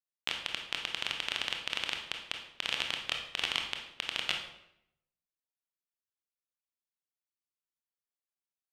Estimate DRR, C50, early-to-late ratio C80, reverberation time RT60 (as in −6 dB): 2.5 dB, 5.5 dB, 9.0 dB, 0.75 s